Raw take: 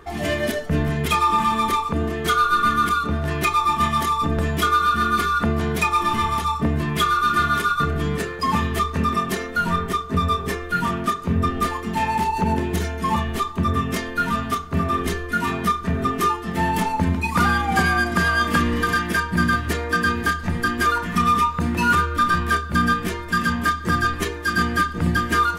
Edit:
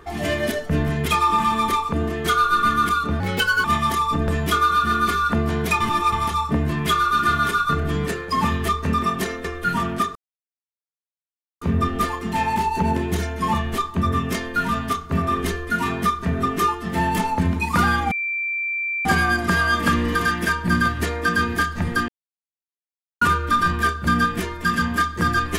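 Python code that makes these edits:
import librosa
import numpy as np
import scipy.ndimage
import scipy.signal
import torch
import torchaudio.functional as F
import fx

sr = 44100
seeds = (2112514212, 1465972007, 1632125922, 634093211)

y = fx.edit(x, sr, fx.speed_span(start_s=3.2, length_s=0.55, speed=1.24),
    fx.reverse_span(start_s=5.91, length_s=0.32),
    fx.cut(start_s=9.55, length_s=0.97),
    fx.insert_silence(at_s=11.23, length_s=1.46),
    fx.insert_tone(at_s=17.73, length_s=0.94, hz=2350.0, db=-22.0),
    fx.silence(start_s=20.76, length_s=1.13), tone=tone)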